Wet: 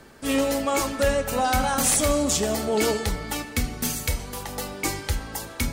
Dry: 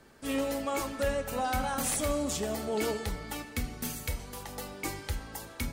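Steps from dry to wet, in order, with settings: dynamic EQ 6200 Hz, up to +4 dB, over -46 dBFS, Q 0.88; reverse; upward compressor, threshold -42 dBFS; reverse; gain +8 dB

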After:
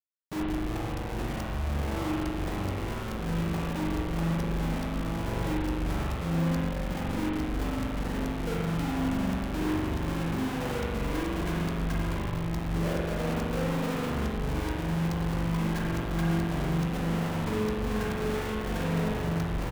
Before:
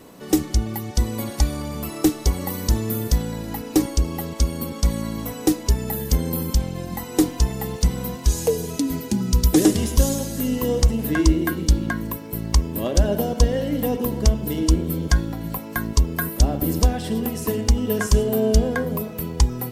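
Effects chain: Wiener smoothing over 15 samples; LPF 3300 Hz 6 dB/oct; gate with hold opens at -28 dBFS; notches 50/100/150/200/250/300/350 Hz; 15.13–17.43 transient shaper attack +3 dB, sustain +8 dB; compressor 5:1, threshold -25 dBFS, peak gain reduction 14.5 dB; Schmitt trigger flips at -33.5 dBFS; doubler 19 ms -13.5 dB; spring tank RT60 1.5 s, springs 42 ms, chirp 80 ms, DRR -4 dB; gain -6 dB

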